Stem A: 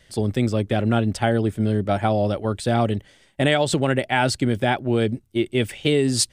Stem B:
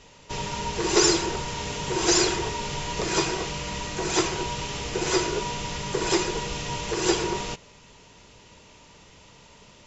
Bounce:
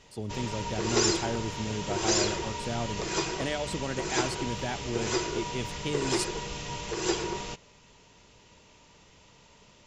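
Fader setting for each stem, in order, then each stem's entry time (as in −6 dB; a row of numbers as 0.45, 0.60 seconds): −13.5, −5.5 decibels; 0.00, 0.00 seconds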